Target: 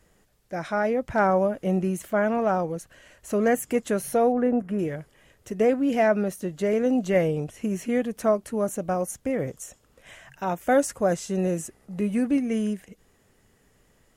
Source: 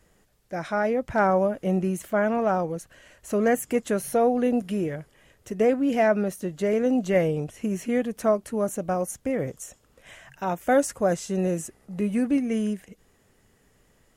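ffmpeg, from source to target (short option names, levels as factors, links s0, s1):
-filter_complex "[0:a]asettb=1/sr,asplit=3[s0][s1][s2];[s0]atrim=end=4.324[s3];[s1]atrim=start=4.32:end=4.79,asetpts=PTS-STARTPTS,afade=t=in:d=0.004:c=qsin,afade=t=out:st=0.466:d=0.004:c=qsin,highshelf=f=2400:t=q:w=1.5:g=-13.5[s4];[s2]atrim=start=4.786[s5];[s3][s4]acrossfade=d=0.004:c1=hsin:c2=qsin[s6];[s6][s5]acrossfade=d=0.004:c1=qsin:c2=hsin"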